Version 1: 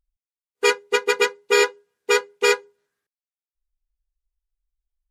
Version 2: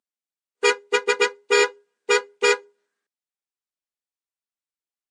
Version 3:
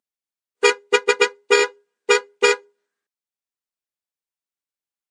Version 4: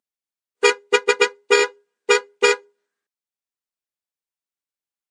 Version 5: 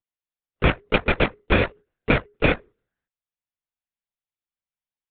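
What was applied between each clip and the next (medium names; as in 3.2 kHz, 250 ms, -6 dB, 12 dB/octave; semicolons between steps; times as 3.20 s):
elliptic band-pass 220–8900 Hz
transient shaper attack +6 dB, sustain -1 dB; trim -1 dB
no audible change
LPC vocoder at 8 kHz whisper; trim -2.5 dB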